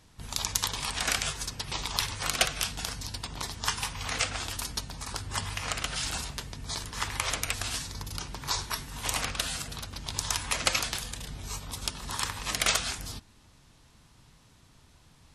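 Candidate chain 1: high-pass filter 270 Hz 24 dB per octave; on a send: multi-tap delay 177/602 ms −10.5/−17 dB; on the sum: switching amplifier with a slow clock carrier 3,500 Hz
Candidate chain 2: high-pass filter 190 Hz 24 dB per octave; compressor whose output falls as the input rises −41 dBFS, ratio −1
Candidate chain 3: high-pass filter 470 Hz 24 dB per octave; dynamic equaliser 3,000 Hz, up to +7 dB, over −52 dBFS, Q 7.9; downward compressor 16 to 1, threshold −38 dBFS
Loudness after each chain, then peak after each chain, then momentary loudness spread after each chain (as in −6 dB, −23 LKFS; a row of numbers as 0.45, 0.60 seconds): −24.0, −37.5, −41.5 LKFS; −10.5, −15.5, −17.0 dBFS; 0, 19, 7 LU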